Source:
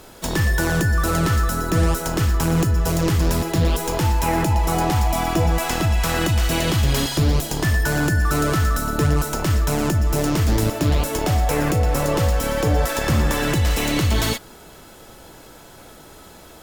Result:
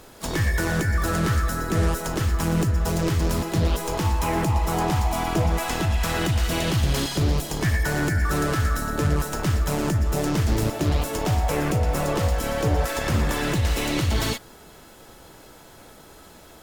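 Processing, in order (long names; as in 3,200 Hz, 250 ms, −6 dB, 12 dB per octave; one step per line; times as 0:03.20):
pitch-shifted copies added +4 semitones −9 dB
highs frequency-modulated by the lows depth 0.18 ms
level −4 dB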